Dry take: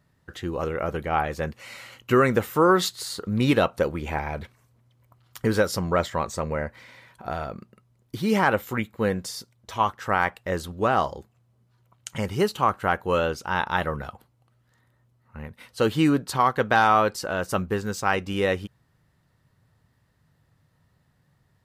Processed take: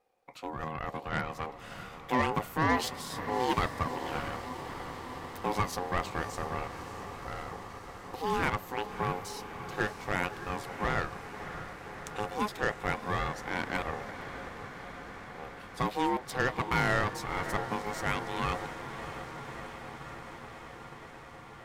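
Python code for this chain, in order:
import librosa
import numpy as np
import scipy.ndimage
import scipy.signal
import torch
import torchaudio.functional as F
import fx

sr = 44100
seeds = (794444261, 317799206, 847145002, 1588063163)

y = fx.cheby_harmonics(x, sr, harmonics=(8,), levels_db=(-22,), full_scale_db=-7.0)
y = fx.echo_diffused(y, sr, ms=619, feedback_pct=78, wet_db=-11)
y = y * np.sin(2.0 * np.pi * 630.0 * np.arange(len(y)) / sr)
y = F.gain(torch.from_numpy(y), -6.5).numpy()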